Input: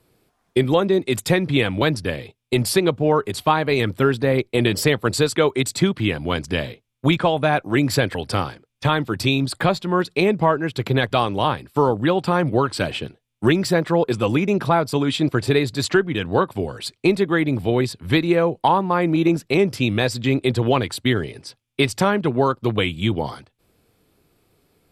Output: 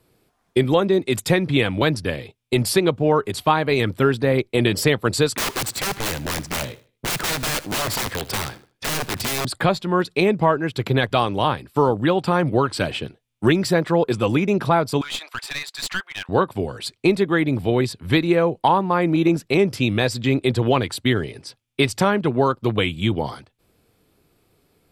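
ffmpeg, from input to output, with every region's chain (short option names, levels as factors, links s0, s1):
-filter_complex "[0:a]asettb=1/sr,asplit=3[s0][s1][s2];[s0]atrim=end=5.364[s3];[s1]atrim=start=5.36:end=9.45,asetpts=PTS-STARTPTS,afade=t=in:d=0.004:c=qsin,afade=t=out:st=4.086:d=0.004:c=qsin,aeval=exprs='(mod(8.41*val(0)+1,2)-1)/8.41':c=same,aecho=1:1:77|154|231:0.126|0.0378|0.0113,atrim=end_sample=180369[s4];[s2]atrim=start=9.446[s5];[s3][s4]acrossfade=d=0.004:c1=hsin:c2=qsin[s6];[s6][s5]acrossfade=d=0.004:c1=qsin:c2=hsin,asettb=1/sr,asplit=3[s7][s8][s9];[s7]atrim=end=15.014[s10];[s8]atrim=start=15.01:end=16.29,asetpts=PTS-STARTPTS,afade=t=in:d=0.004:c=qsin,afade=t=out:st=1.276:d=0.004:c=qsin,highpass=f=910:w=0.5412,highpass=f=910:w=1.3066,aeval=exprs='clip(val(0),-1,0.0355)':c=same[s11];[s9]atrim=start=16.286[s12];[s10][s11]acrossfade=d=0.004:c1=hsin:c2=qsin[s13];[s13][s12]acrossfade=d=0.004:c1=qsin:c2=hsin"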